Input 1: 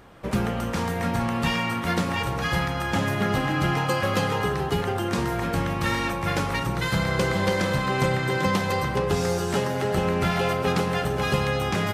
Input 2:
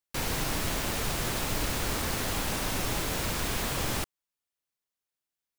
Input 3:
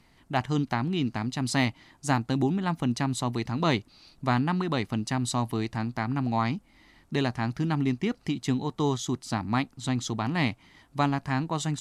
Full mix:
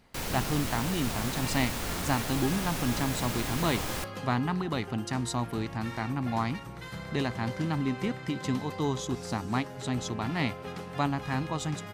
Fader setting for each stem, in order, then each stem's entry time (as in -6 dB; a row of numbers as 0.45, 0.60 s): -16.0, -3.5, -3.5 dB; 0.00, 0.00, 0.00 s